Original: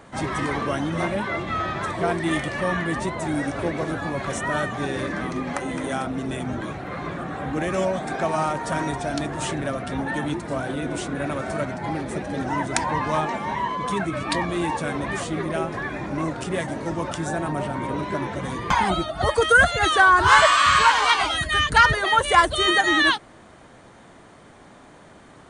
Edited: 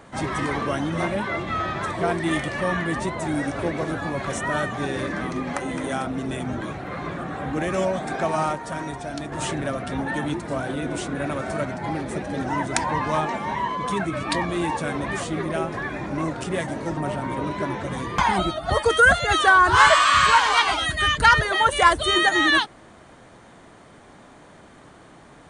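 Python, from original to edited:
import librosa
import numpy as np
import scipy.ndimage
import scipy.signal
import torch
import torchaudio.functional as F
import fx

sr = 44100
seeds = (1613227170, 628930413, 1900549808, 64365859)

y = fx.edit(x, sr, fx.clip_gain(start_s=8.55, length_s=0.77, db=-5.0),
    fx.cut(start_s=16.97, length_s=0.52), tone=tone)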